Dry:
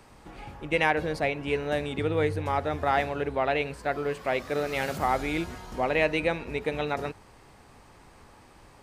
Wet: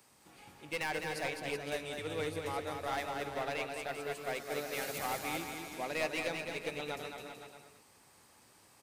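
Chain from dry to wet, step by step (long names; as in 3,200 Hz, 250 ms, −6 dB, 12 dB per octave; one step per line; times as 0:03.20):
high-pass filter 110 Hz 12 dB per octave
first-order pre-emphasis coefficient 0.8
hard clipping −33 dBFS, distortion −11 dB
bouncing-ball delay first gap 210 ms, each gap 0.8×, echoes 5
expander for the loud parts 1.5 to 1, over −42 dBFS
level +3.5 dB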